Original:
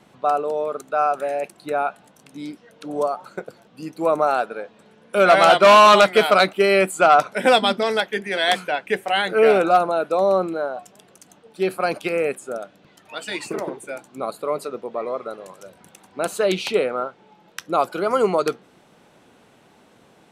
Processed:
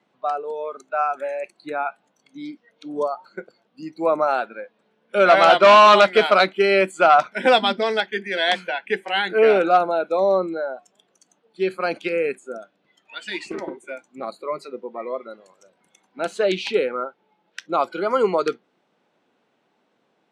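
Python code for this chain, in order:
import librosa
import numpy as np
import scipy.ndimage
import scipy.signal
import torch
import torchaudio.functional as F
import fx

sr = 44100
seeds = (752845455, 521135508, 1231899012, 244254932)

y = fx.bandpass_edges(x, sr, low_hz=200.0, high_hz=5100.0)
y = fx.noise_reduce_blind(y, sr, reduce_db=13)
y = fx.doppler_dist(y, sr, depth_ms=0.13, at=(13.4, 14.29))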